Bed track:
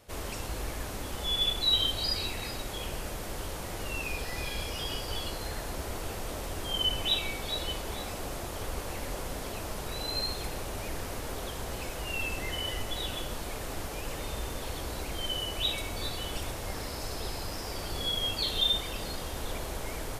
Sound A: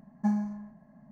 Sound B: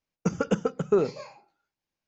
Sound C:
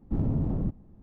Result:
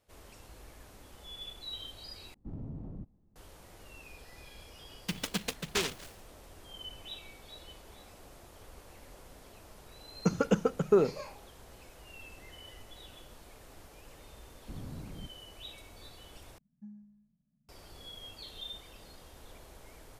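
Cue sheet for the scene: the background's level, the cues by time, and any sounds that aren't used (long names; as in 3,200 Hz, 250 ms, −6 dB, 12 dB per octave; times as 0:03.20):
bed track −16.5 dB
0:02.34: overwrite with C −15 dB
0:04.83: mix in B −10 dB + short delay modulated by noise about 2,600 Hz, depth 0.42 ms
0:10.00: mix in B −1.5 dB
0:14.57: mix in C −17 dB + stylus tracing distortion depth 0.49 ms
0:16.58: overwrite with A −16 dB + drawn EQ curve 140 Hz 0 dB, 920 Hz −29 dB, 1,500 Hz −21 dB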